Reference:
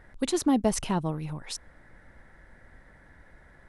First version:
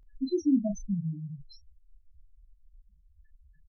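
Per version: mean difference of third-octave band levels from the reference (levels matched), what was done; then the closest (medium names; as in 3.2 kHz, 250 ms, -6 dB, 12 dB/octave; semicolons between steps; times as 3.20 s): 14.5 dB: loudest bins only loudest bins 2; doubling 30 ms -7.5 dB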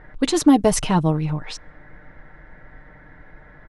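1.5 dB: level-controlled noise filter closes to 2.4 kHz, open at -20 dBFS; comb 6.6 ms, depth 51%; trim +8 dB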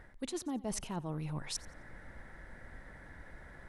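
9.0 dB: reverse; compression 8:1, threshold -38 dBFS, peak gain reduction 19 dB; reverse; modulated delay 88 ms, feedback 31%, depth 92 cents, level -20 dB; trim +2.5 dB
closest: second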